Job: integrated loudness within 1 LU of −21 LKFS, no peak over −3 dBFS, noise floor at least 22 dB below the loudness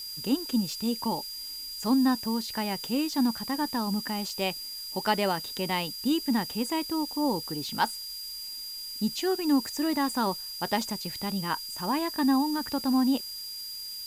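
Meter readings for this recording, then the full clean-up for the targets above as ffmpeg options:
interfering tone 4,800 Hz; level of the tone −37 dBFS; background noise floor −39 dBFS; target noise floor −51 dBFS; integrated loudness −29.0 LKFS; sample peak −11.5 dBFS; target loudness −21.0 LKFS
→ -af "bandreject=frequency=4800:width=30"
-af "afftdn=noise_reduction=12:noise_floor=-39"
-af "volume=8dB"

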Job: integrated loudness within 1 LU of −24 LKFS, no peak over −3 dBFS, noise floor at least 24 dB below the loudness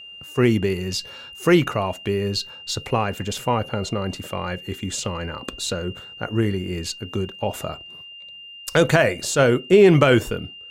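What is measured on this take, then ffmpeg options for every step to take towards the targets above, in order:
interfering tone 2,800 Hz; level of the tone −38 dBFS; integrated loudness −22.0 LKFS; sample peak −4.0 dBFS; target loudness −24.0 LKFS
→ -af "bandreject=frequency=2800:width=30"
-af "volume=-2dB"

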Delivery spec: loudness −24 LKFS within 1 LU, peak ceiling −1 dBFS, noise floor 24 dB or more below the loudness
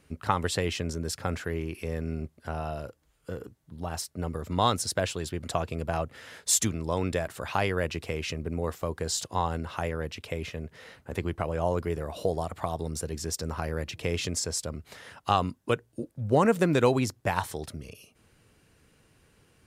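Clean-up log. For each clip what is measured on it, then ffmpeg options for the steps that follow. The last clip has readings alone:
integrated loudness −30.0 LKFS; sample peak −7.5 dBFS; target loudness −24.0 LKFS
→ -af "volume=6dB"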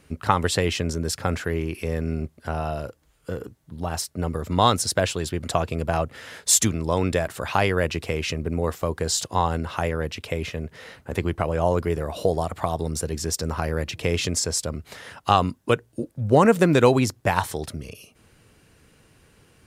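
integrated loudness −24.0 LKFS; sample peak −1.5 dBFS; background noise floor −60 dBFS

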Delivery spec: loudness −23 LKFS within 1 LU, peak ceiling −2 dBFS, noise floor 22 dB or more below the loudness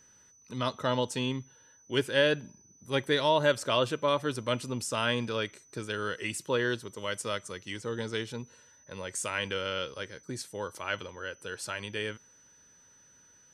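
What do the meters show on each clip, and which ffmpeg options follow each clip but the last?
interfering tone 6,000 Hz; level of the tone −58 dBFS; integrated loudness −31.5 LKFS; sample peak −11.5 dBFS; target loudness −23.0 LKFS
→ -af "bandreject=frequency=6000:width=30"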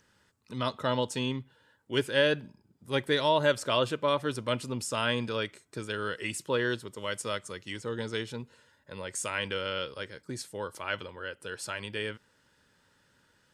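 interfering tone none found; integrated loudness −31.5 LKFS; sample peak −11.5 dBFS; target loudness −23.0 LKFS
→ -af "volume=8.5dB"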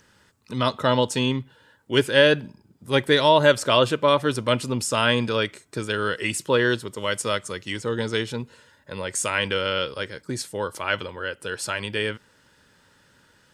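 integrated loudness −23.0 LKFS; sample peak −3.0 dBFS; background noise floor −60 dBFS

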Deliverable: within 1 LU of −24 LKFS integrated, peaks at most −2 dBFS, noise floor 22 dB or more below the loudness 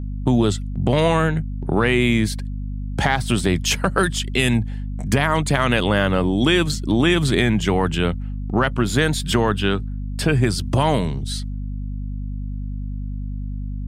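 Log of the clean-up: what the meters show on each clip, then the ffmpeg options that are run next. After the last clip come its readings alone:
mains hum 50 Hz; hum harmonics up to 250 Hz; level of the hum −24 dBFS; integrated loudness −21.0 LKFS; sample peak −2.5 dBFS; target loudness −24.0 LKFS
→ -af "bandreject=frequency=50:width_type=h:width=4,bandreject=frequency=100:width_type=h:width=4,bandreject=frequency=150:width_type=h:width=4,bandreject=frequency=200:width_type=h:width=4,bandreject=frequency=250:width_type=h:width=4"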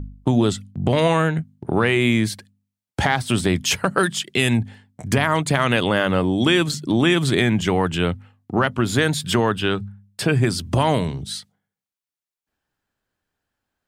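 mains hum none found; integrated loudness −20.5 LKFS; sample peak −3.0 dBFS; target loudness −24.0 LKFS
→ -af "volume=-3.5dB"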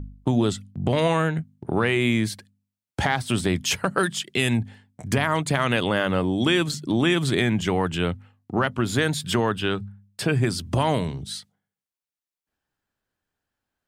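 integrated loudness −24.0 LKFS; sample peak −6.5 dBFS; background noise floor −92 dBFS

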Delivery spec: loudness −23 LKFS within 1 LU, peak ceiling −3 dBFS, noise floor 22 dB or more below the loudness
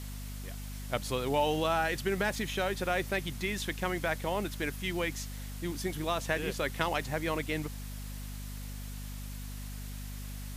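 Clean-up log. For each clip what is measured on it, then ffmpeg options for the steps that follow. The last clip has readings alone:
mains hum 50 Hz; hum harmonics up to 250 Hz; level of the hum −38 dBFS; background noise floor −41 dBFS; target noise floor −56 dBFS; integrated loudness −34.0 LKFS; sample peak −12.5 dBFS; target loudness −23.0 LKFS
→ -af "bandreject=frequency=50:width_type=h:width=4,bandreject=frequency=100:width_type=h:width=4,bandreject=frequency=150:width_type=h:width=4,bandreject=frequency=200:width_type=h:width=4,bandreject=frequency=250:width_type=h:width=4"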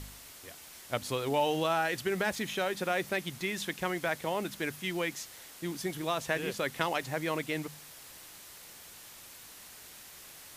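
mains hum none found; background noise floor −51 dBFS; target noise floor −55 dBFS
→ -af "afftdn=noise_reduction=6:noise_floor=-51"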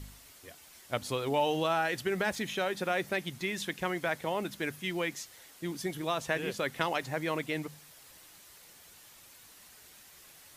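background noise floor −56 dBFS; integrated loudness −33.0 LKFS; sample peak −12.0 dBFS; target loudness −23.0 LKFS
→ -af "volume=10dB,alimiter=limit=-3dB:level=0:latency=1"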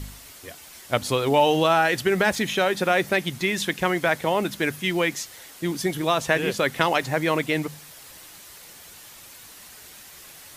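integrated loudness −23.0 LKFS; sample peak −3.0 dBFS; background noise floor −46 dBFS

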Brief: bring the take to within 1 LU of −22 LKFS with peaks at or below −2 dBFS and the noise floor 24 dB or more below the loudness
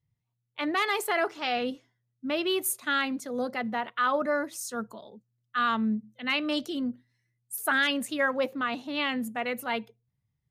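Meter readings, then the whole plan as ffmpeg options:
integrated loudness −29.0 LKFS; sample peak −14.0 dBFS; target loudness −22.0 LKFS
→ -af "volume=7dB"

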